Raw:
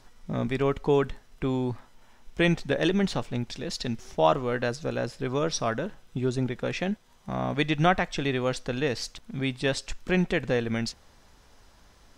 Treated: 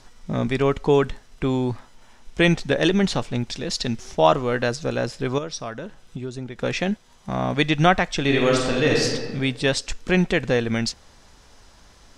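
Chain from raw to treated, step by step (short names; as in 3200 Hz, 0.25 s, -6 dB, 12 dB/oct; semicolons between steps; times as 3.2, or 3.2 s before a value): LPF 8400 Hz 12 dB/oct; high shelf 5700 Hz +7.5 dB; 5.38–6.59 compressor 2.5:1, threshold -38 dBFS, peak gain reduction 11 dB; 8.21–9.04 reverb throw, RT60 1.4 s, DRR -2 dB; gain +5 dB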